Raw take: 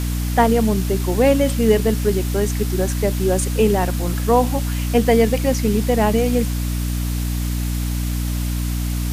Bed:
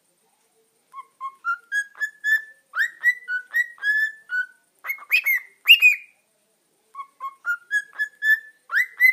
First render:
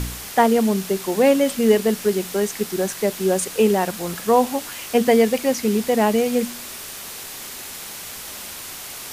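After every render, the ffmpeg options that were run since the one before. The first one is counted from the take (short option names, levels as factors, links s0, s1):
-af "bandreject=f=60:t=h:w=4,bandreject=f=120:t=h:w=4,bandreject=f=180:t=h:w=4,bandreject=f=240:t=h:w=4,bandreject=f=300:t=h:w=4"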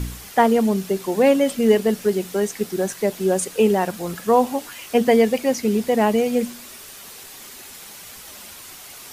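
-af "afftdn=nr=7:nf=-35"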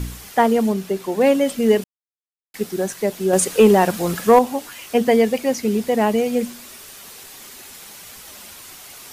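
-filter_complex "[0:a]asettb=1/sr,asplit=3[s0][s1][s2];[s0]atrim=end=0.724[s3];[s1]atrim=start=0.72:end=1.21,asetpts=PTS-STARTPTS,afade=t=in:d=0.004:c=qsin,afade=t=out:st=0.486:d=0.004:c=qsin,bass=f=250:g=-2,treble=f=4000:g=-4[s4];[s2]atrim=start=1.206[s5];[s3][s4]acrossfade=d=0.004:c1=hsin:c2=qsin[s6];[s6][s5]acrossfade=d=0.004:c1=qsin:c2=hsin,asettb=1/sr,asplit=3[s7][s8][s9];[s7]atrim=end=3.334[s10];[s8]atrim=start=3.33:end=4.39,asetpts=PTS-STARTPTS,afade=t=in:d=0.004:c=qsin,afade=t=out:st=1.056:d=0.004:c=qsin,acontrast=57[s11];[s9]atrim=start=4.386[s12];[s10][s11]acrossfade=d=0.004:c1=hsin:c2=qsin[s13];[s13][s12]acrossfade=d=0.004:c1=qsin:c2=hsin,asplit=3[s14][s15][s16];[s14]atrim=end=1.84,asetpts=PTS-STARTPTS,afade=t=out:st=1.836:d=0.004:c=hsin[s17];[s15]atrim=start=1.84:end=2.54,asetpts=PTS-STARTPTS,volume=0[s18];[s16]atrim=start=2.54,asetpts=PTS-STARTPTS,afade=t=in:d=0.004:c=hsin[s19];[s17][s18][s19]concat=n=3:v=0:a=1"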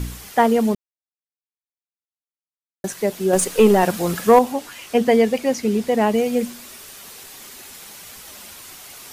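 -filter_complex "[0:a]asettb=1/sr,asplit=3[s0][s1][s2];[s0]atrim=end=3.354[s3];[s1]atrim=start=3.35:end=3.83,asetpts=PTS-STARTPTS,afade=t=in:d=0.004:c=qsin,afade=t=out:st=0.476:d=0.004:c=qsin,aeval=exprs='if(lt(val(0),0),0.708*val(0),val(0))':c=same[s4];[s2]atrim=start=3.826[s5];[s3][s4]acrossfade=d=0.004:c1=hsin:c2=qsin[s6];[s6][s5]acrossfade=d=0.004:c1=qsin:c2=hsin,asettb=1/sr,asplit=3[s7][s8][s9];[s7]atrim=end=4.524[s10];[s8]atrim=start=4.52:end=6.14,asetpts=PTS-STARTPTS,afade=t=in:d=0.004:c=qsin,afade=t=out:st=1.616:d=0.004:c=qsin,highshelf=f=12000:g=-7.5[s11];[s9]atrim=start=6.136[s12];[s10][s11]acrossfade=d=0.004:c1=hsin:c2=qsin[s13];[s13][s12]acrossfade=d=0.004:c1=qsin:c2=hsin,asplit=3[s14][s15][s16];[s14]atrim=end=0.75,asetpts=PTS-STARTPTS,afade=t=out:st=0.746:d=0.004:c=hsin[s17];[s15]atrim=start=0.75:end=2.84,asetpts=PTS-STARTPTS,volume=0[s18];[s16]atrim=start=2.84,asetpts=PTS-STARTPTS,afade=t=in:d=0.004:c=hsin[s19];[s17][s18][s19]concat=n=3:v=0:a=1"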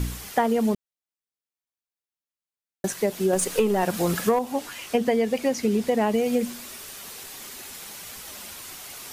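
-af "acompressor=threshold=0.126:ratio=10"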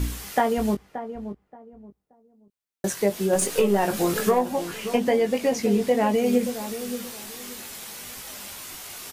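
-filter_complex "[0:a]asplit=2[s0][s1];[s1]adelay=20,volume=0.531[s2];[s0][s2]amix=inputs=2:normalize=0,asplit=2[s3][s4];[s4]adelay=577,lowpass=f=900:p=1,volume=0.316,asplit=2[s5][s6];[s6]adelay=577,lowpass=f=900:p=1,volume=0.27,asplit=2[s7][s8];[s8]adelay=577,lowpass=f=900:p=1,volume=0.27[s9];[s5][s7][s9]amix=inputs=3:normalize=0[s10];[s3][s10]amix=inputs=2:normalize=0"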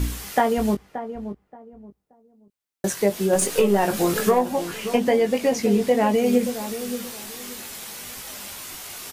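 -af "volume=1.26"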